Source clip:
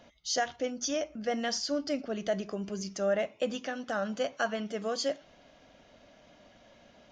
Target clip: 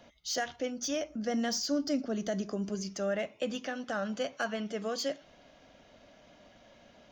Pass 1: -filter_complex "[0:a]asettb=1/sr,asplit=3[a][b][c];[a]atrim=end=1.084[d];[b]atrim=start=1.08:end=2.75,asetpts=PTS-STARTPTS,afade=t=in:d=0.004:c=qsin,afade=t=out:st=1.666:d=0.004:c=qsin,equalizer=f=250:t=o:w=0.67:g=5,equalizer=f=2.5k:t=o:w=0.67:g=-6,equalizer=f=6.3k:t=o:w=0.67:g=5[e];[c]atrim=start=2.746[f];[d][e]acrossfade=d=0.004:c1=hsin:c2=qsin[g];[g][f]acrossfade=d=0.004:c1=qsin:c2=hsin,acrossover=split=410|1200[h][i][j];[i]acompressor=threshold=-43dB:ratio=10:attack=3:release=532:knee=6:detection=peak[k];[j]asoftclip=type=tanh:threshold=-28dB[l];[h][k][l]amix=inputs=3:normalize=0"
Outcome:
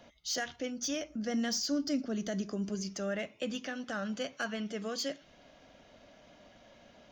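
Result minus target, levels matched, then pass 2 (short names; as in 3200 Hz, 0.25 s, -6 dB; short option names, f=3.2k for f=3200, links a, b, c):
compressor: peak gain reduction +10 dB
-filter_complex "[0:a]asettb=1/sr,asplit=3[a][b][c];[a]atrim=end=1.084[d];[b]atrim=start=1.08:end=2.75,asetpts=PTS-STARTPTS,afade=t=in:d=0.004:c=qsin,afade=t=out:st=1.666:d=0.004:c=qsin,equalizer=f=250:t=o:w=0.67:g=5,equalizer=f=2.5k:t=o:w=0.67:g=-6,equalizer=f=6.3k:t=o:w=0.67:g=5[e];[c]atrim=start=2.746[f];[d][e]acrossfade=d=0.004:c1=hsin:c2=qsin[g];[g][f]acrossfade=d=0.004:c1=qsin:c2=hsin,acrossover=split=410|1200[h][i][j];[i]acompressor=threshold=-32dB:ratio=10:attack=3:release=532:knee=6:detection=peak[k];[j]asoftclip=type=tanh:threshold=-28dB[l];[h][k][l]amix=inputs=3:normalize=0"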